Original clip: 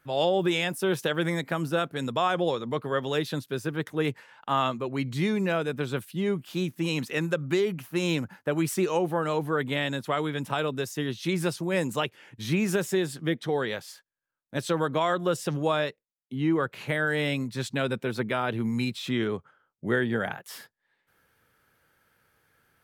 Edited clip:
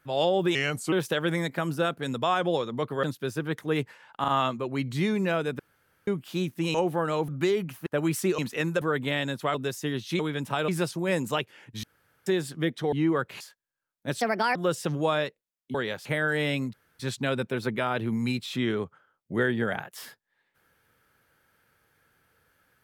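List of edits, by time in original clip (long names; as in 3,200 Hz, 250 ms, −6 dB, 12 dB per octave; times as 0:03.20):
0:00.55–0:00.86: play speed 83%
0:02.97–0:03.32: remove
0:04.49: stutter 0.04 s, 3 plays
0:05.80–0:06.28: fill with room tone
0:06.95–0:07.38: swap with 0:08.92–0:09.46
0:07.96–0:08.40: remove
0:10.19–0:10.68: move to 0:11.33
0:12.48–0:12.91: fill with room tone
0:13.57–0:13.88: swap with 0:16.36–0:16.84
0:14.68–0:15.17: play speed 140%
0:17.52: splice in room tone 0.26 s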